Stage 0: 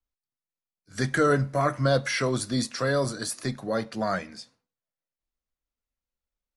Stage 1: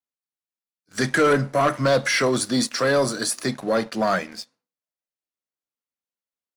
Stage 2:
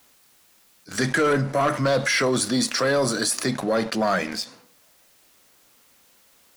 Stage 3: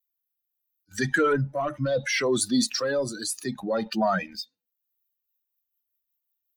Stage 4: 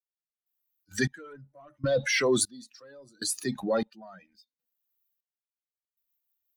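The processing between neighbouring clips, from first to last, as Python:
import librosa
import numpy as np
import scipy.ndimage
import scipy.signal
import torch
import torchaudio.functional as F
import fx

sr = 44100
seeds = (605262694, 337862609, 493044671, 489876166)

y1 = scipy.signal.sosfilt(scipy.signal.butter(2, 190.0, 'highpass', fs=sr, output='sos'), x)
y1 = fx.leveller(y1, sr, passes=2)
y2 = fx.env_flatten(y1, sr, amount_pct=50)
y2 = F.gain(torch.from_numpy(y2), -3.0).numpy()
y3 = fx.bin_expand(y2, sr, power=2.0)
y3 = fx.rotary_switch(y3, sr, hz=0.7, then_hz=5.5, switch_at_s=4.71)
y3 = F.gain(torch.from_numpy(y3), 2.5).numpy()
y4 = fx.step_gate(y3, sr, bpm=98, pattern='...xxxx..', floor_db=-24.0, edge_ms=4.5)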